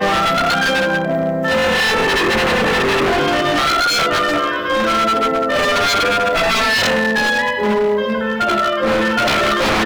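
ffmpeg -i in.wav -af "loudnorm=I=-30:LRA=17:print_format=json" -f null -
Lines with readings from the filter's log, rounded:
"input_i" : "-15.3",
"input_tp" : "-10.5",
"input_lra" : "0.8",
"input_thresh" : "-25.3",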